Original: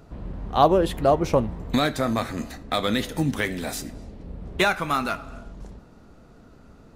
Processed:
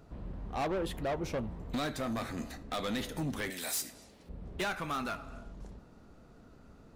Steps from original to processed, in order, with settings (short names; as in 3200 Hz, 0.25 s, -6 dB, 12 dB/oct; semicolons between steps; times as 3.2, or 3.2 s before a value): 3.5–4.29 tilt +4 dB/oct; vocal rider within 3 dB 2 s; soft clip -21.5 dBFS, distortion -7 dB; gain -8 dB